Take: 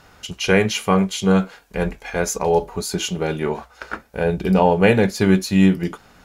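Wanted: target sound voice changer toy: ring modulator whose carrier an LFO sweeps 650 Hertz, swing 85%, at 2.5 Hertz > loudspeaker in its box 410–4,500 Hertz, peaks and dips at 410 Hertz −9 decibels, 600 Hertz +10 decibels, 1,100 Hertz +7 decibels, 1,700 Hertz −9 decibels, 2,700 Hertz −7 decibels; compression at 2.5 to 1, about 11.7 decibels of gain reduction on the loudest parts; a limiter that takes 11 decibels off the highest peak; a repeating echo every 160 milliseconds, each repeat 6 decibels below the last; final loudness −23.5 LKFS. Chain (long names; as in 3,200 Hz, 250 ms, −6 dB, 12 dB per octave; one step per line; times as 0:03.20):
downward compressor 2.5 to 1, threshold −28 dBFS
brickwall limiter −23.5 dBFS
repeating echo 160 ms, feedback 50%, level −6 dB
ring modulator whose carrier an LFO sweeps 650 Hz, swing 85%, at 2.5 Hz
loudspeaker in its box 410–4,500 Hz, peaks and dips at 410 Hz −9 dB, 600 Hz +10 dB, 1,100 Hz +7 dB, 1,700 Hz −9 dB, 2,700 Hz −7 dB
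level +11 dB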